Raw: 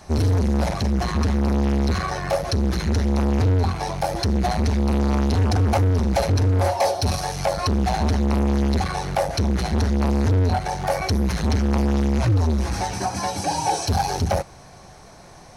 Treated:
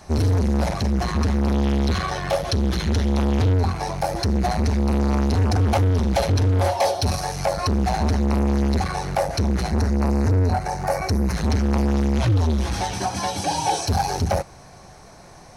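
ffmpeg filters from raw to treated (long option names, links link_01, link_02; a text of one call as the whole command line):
ffmpeg -i in.wav -af "asetnsamples=nb_out_samples=441:pad=0,asendcmd='1.47 equalizer g 7.5;3.53 equalizer g -4;5.61 equalizer g 4.5;7.05 equalizer g -4.5;9.7 equalizer g -14.5;11.34 equalizer g -3;12.16 equalizer g 7.5;13.81 equalizer g -2.5',equalizer=frequency=3300:width_type=o:width=0.42:gain=-1" out.wav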